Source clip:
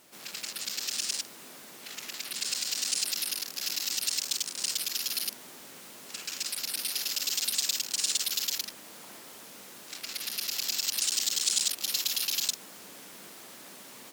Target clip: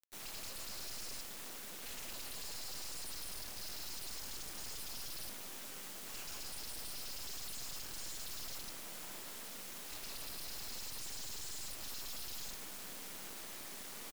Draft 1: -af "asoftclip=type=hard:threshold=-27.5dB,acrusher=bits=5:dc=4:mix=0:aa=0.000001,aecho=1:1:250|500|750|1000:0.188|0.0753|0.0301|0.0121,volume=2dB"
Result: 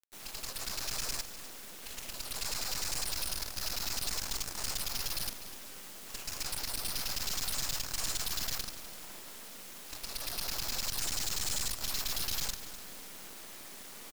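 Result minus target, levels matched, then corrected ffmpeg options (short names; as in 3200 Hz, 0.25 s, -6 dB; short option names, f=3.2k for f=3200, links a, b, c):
hard clip: distortion -7 dB
-af "asoftclip=type=hard:threshold=-39dB,acrusher=bits=5:dc=4:mix=0:aa=0.000001,aecho=1:1:250|500|750|1000:0.188|0.0753|0.0301|0.0121,volume=2dB"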